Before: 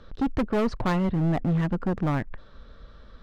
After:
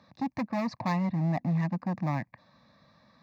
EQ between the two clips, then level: high-pass 130 Hz 24 dB/octave; static phaser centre 2.1 kHz, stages 8; -1.0 dB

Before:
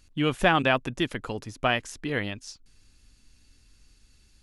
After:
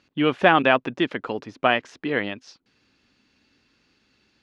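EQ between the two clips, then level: high-pass 230 Hz 12 dB/octave; distance through air 230 m; +6.5 dB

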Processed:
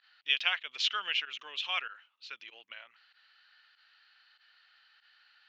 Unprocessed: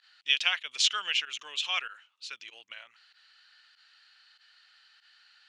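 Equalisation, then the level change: band-pass 150–6000 Hz; distance through air 160 m; 0.0 dB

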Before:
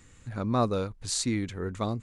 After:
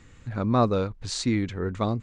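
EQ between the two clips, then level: distance through air 140 m; treble shelf 9.9 kHz +11 dB; +4.5 dB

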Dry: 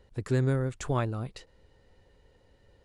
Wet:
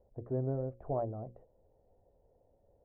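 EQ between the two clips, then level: four-pole ladder low-pass 740 Hz, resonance 65%; hum notches 60/120/180/240/300/360/420/480/540 Hz; +2.0 dB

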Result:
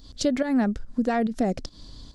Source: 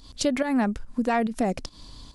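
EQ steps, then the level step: fifteen-band graphic EQ 1 kHz -8 dB, 2.5 kHz -7 dB, 10 kHz -11 dB; +1.5 dB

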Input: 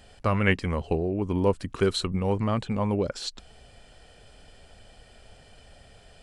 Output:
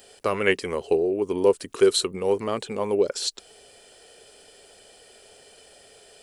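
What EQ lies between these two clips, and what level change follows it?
RIAA curve recording; peaking EQ 410 Hz +13.5 dB 0.83 oct; -1.5 dB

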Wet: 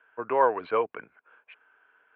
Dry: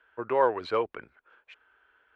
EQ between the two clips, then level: cabinet simulation 220–2400 Hz, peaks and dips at 240 Hz -4 dB, 360 Hz -9 dB, 550 Hz -6 dB, 850 Hz -4 dB, 1.3 kHz -5 dB, 1.9 kHz -7 dB; +6.5 dB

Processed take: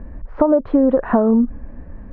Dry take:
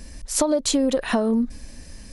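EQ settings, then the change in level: inverse Chebyshev low-pass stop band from 7.5 kHz, stop band 80 dB; +6.5 dB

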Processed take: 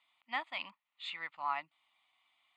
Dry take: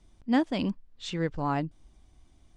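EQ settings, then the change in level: dynamic bell 3 kHz, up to -7 dB, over -55 dBFS, Q 3.2; ladder band-pass 2.1 kHz, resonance 30%; static phaser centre 1.6 kHz, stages 6; +16.0 dB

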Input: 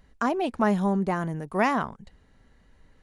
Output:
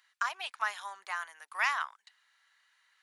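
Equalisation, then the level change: high-pass 1.2 kHz 24 dB/octave; peaking EQ 3.7 kHz +3 dB 0.83 oct; 0.0 dB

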